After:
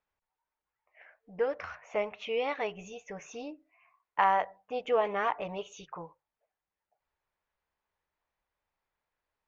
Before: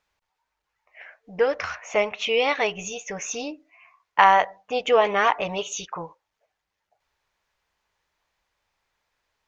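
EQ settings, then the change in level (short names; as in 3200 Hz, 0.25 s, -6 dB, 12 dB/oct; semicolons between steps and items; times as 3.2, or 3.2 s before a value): LPF 1500 Hz 6 dB/oct; notches 50/100/150 Hz; -8.0 dB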